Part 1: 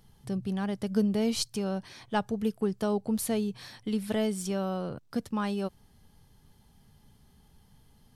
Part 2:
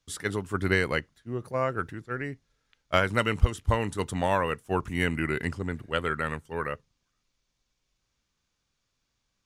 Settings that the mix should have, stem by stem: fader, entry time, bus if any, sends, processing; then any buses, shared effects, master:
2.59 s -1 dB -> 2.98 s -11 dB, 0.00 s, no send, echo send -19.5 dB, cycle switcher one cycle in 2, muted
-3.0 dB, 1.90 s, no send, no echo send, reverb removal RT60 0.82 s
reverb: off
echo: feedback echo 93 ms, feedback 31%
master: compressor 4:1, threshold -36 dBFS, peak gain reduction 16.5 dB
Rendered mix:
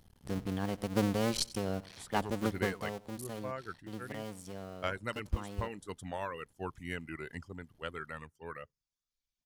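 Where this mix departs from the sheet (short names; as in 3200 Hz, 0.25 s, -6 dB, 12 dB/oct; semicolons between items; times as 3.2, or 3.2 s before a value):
stem 2 -3.0 dB -> -12.0 dB; master: missing compressor 4:1, threshold -36 dBFS, peak gain reduction 16.5 dB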